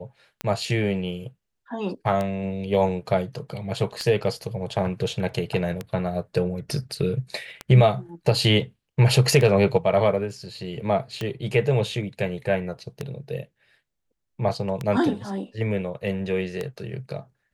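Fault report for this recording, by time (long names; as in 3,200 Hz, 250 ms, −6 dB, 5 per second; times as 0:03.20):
scratch tick 33 1/3 rpm −14 dBFS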